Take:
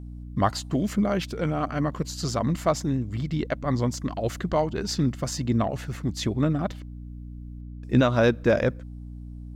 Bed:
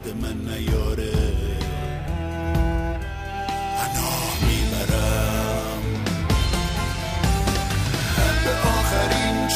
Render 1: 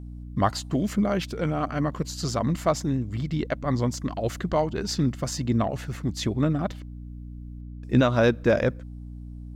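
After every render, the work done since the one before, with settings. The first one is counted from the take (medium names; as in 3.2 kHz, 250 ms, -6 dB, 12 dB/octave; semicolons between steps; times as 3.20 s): no audible change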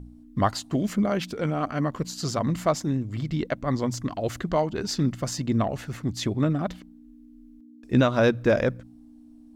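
de-hum 60 Hz, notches 3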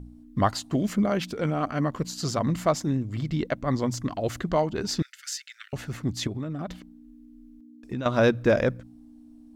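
5.02–5.73 s: steep high-pass 1.4 kHz 96 dB/octave; 6.27–8.06 s: compression, threshold -28 dBFS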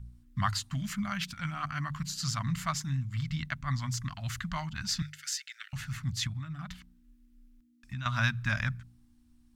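Chebyshev band-stop 130–1400 Hz, order 2; hum notches 50/100/150 Hz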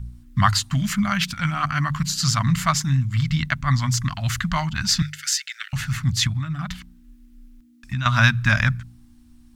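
trim +12 dB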